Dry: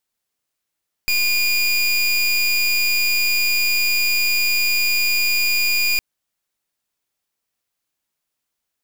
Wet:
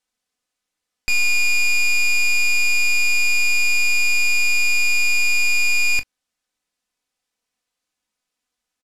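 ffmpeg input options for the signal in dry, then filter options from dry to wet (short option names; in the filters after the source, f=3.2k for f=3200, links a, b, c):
-f lavfi -i "aevalsrc='0.126*(2*lt(mod(2430*t,1),0.27)-1)':d=4.91:s=44100"
-af "lowpass=8.9k,aecho=1:1:4:0.55,aecho=1:1:23|39:0.237|0.141"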